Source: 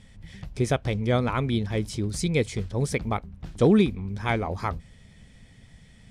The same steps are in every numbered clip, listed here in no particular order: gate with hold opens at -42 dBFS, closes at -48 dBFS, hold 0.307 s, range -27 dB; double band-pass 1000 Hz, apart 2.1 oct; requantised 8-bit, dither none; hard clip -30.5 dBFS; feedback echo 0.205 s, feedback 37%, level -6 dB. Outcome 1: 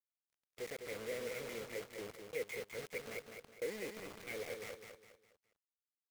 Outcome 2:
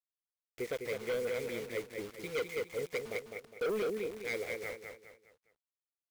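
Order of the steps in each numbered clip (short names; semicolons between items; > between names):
hard clip > double band-pass > requantised > gate with hold > feedback echo; double band-pass > gate with hold > requantised > feedback echo > hard clip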